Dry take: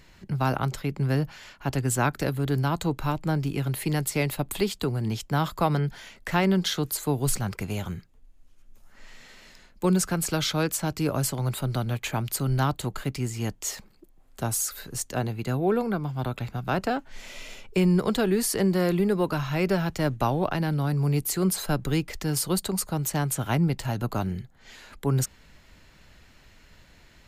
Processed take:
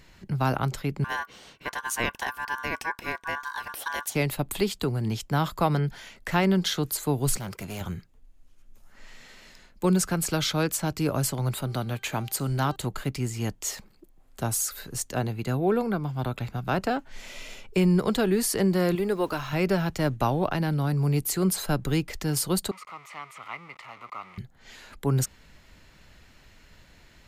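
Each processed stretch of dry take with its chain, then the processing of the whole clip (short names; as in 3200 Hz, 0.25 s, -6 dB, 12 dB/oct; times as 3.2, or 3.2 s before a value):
1.04–4.15 HPF 190 Hz 24 dB/oct + ring modulator 1300 Hz
7.37–7.81 HPF 130 Hz 6 dB/oct + high shelf 7900 Hz +4 dB + hard clip -32 dBFS
11.62–12.76 low shelf 87 Hz -9.5 dB + de-hum 392.1 Hz, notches 22
18.95–19.53 bell 160 Hz -10 dB 0.94 oct + sample gate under -49.5 dBFS
22.71–24.38 zero-crossing step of -28 dBFS + double band-pass 1600 Hz, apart 0.8 oct
whole clip: dry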